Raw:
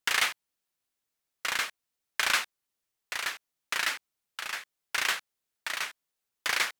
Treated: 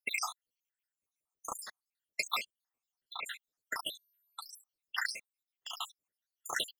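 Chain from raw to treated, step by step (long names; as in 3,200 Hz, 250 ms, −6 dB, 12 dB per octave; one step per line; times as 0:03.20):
time-frequency cells dropped at random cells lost 82%
0:03.84–0:04.59: steady tone 13,000 Hz −74 dBFS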